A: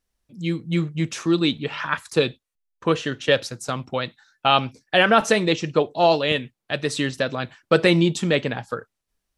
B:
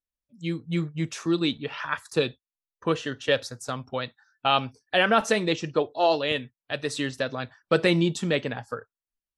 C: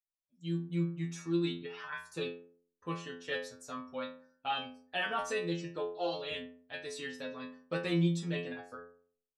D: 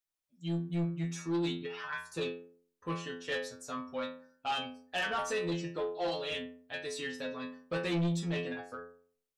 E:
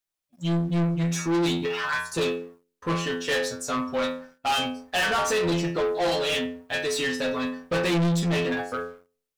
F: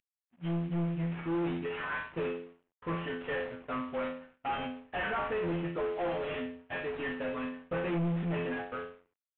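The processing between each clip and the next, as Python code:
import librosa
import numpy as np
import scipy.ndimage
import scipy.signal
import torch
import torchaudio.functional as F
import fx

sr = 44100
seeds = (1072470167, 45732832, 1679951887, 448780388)

y1 = fx.noise_reduce_blind(x, sr, reduce_db=15)
y1 = F.gain(torch.from_numpy(y1), -4.5).numpy()
y2 = fx.stiff_resonator(y1, sr, f0_hz=84.0, decay_s=0.59, stiffness=0.002)
y3 = 10.0 ** (-30.5 / 20.0) * np.tanh(y2 / 10.0 ** (-30.5 / 20.0))
y3 = F.gain(torch.from_numpy(y3), 3.5).numpy()
y4 = fx.leveller(y3, sr, passes=2)
y4 = F.gain(torch.from_numpy(y4), 7.0).numpy()
y5 = fx.cvsd(y4, sr, bps=16000)
y5 = F.gain(torch.from_numpy(y5), -7.5).numpy()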